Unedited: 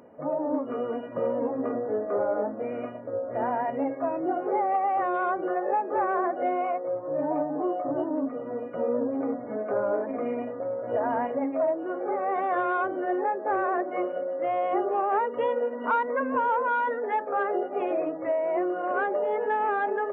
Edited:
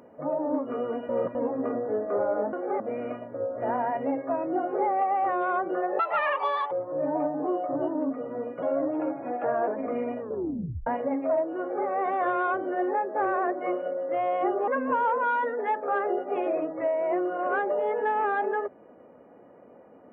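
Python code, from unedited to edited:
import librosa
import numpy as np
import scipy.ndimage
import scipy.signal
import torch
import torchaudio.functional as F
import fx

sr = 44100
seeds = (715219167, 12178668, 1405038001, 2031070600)

y = fx.edit(x, sr, fx.reverse_span(start_s=1.09, length_s=0.26),
    fx.speed_span(start_s=5.72, length_s=1.15, speed=1.59),
    fx.speed_span(start_s=8.78, length_s=1.2, speed=1.14),
    fx.tape_stop(start_s=10.5, length_s=0.67),
    fx.duplicate(start_s=11.91, length_s=0.27, to_s=2.53),
    fx.cut(start_s=14.98, length_s=1.14), tone=tone)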